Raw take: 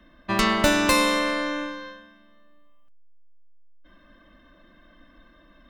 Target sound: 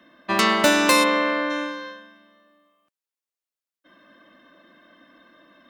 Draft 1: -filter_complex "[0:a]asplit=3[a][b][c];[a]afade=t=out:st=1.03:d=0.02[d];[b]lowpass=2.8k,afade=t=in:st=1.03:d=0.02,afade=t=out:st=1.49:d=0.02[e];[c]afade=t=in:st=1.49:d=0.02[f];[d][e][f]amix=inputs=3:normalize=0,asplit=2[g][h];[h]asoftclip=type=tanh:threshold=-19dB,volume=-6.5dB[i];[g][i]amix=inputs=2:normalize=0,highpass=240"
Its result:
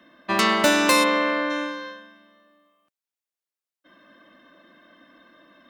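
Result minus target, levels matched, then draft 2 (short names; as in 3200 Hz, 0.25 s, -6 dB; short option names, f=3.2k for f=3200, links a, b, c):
soft clip: distortion +12 dB
-filter_complex "[0:a]asplit=3[a][b][c];[a]afade=t=out:st=1.03:d=0.02[d];[b]lowpass=2.8k,afade=t=in:st=1.03:d=0.02,afade=t=out:st=1.49:d=0.02[e];[c]afade=t=in:st=1.49:d=0.02[f];[d][e][f]amix=inputs=3:normalize=0,asplit=2[g][h];[h]asoftclip=type=tanh:threshold=-8.5dB,volume=-6.5dB[i];[g][i]amix=inputs=2:normalize=0,highpass=240"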